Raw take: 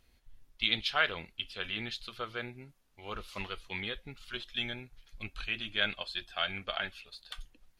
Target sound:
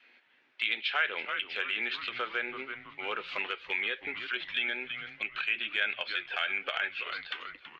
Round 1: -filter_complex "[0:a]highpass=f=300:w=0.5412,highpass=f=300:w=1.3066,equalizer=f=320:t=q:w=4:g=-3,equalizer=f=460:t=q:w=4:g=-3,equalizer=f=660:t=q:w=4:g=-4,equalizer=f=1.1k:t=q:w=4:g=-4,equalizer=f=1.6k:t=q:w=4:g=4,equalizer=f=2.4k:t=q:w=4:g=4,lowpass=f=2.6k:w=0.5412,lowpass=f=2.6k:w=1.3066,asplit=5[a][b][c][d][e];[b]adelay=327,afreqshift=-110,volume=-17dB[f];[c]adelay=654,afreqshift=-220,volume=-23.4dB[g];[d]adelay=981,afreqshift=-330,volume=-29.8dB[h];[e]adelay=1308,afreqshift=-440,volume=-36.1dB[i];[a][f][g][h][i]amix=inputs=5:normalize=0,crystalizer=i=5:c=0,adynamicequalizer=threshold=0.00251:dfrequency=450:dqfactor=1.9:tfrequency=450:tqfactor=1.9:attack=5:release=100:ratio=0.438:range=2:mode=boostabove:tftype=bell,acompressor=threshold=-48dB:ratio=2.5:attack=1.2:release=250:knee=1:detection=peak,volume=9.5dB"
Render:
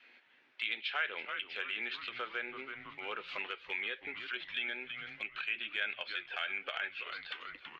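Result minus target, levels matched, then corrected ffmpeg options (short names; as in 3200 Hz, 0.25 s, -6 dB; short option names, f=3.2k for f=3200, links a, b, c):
compressor: peak gain reduction +5.5 dB
-filter_complex "[0:a]highpass=f=300:w=0.5412,highpass=f=300:w=1.3066,equalizer=f=320:t=q:w=4:g=-3,equalizer=f=460:t=q:w=4:g=-3,equalizer=f=660:t=q:w=4:g=-4,equalizer=f=1.1k:t=q:w=4:g=-4,equalizer=f=1.6k:t=q:w=4:g=4,equalizer=f=2.4k:t=q:w=4:g=4,lowpass=f=2.6k:w=0.5412,lowpass=f=2.6k:w=1.3066,asplit=5[a][b][c][d][e];[b]adelay=327,afreqshift=-110,volume=-17dB[f];[c]adelay=654,afreqshift=-220,volume=-23.4dB[g];[d]adelay=981,afreqshift=-330,volume=-29.8dB[h];[e]adelay=1308,afreqshift=-440,volume=-36.1dB[i];[a][f][g][h][i]amix=inputs=5:normalize=0,crystalizer=i=5:c=0,adynamicequalizer=threshold=0.00251:dfrequency=450:dqfactor=1.9:tfrequency=450:tqfactor=1.9:attack=5:release=100:ratio=0.438:range=2:mode=boostabove:tftype=bell,acompressor=threshold=-38.5dB:ratio=2.5:attack=1.2:release=250:knee=1:detection=peak,volume=9.5dB"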